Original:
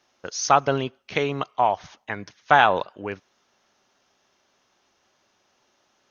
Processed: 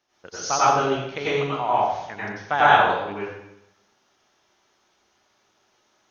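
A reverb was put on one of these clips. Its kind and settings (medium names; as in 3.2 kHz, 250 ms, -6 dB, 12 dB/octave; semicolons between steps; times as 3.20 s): plate-style reverb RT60 0.83 s, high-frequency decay 0.9×, pre-delay 80 ms, DRR -9.5 dB; trim -8.5 dB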